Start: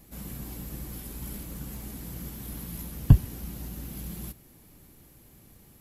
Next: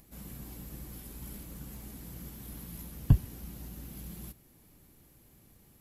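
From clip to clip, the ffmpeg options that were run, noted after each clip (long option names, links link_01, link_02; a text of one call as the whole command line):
ffmpeg -i in.wav -af "acompressor=mode=upward:threshold=-51dB:ratio=2.5,volume=-6dB" out.wav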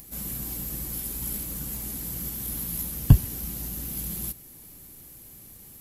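ffmpeg -i in.wav -af "highshelf=frequency=4600:gain=11.5,volume=7dB" out.wav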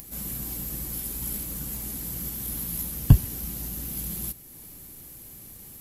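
ffmpeg -i in.wav -af "acompressor=mode=upward:threshold=-39dB:ratio=2.5" out.wav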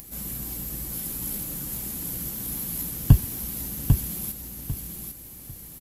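ffmpeg -i in.wav -af "aecho=1:1:797|1594|2391:0.562|0.141|0.0351" out.wav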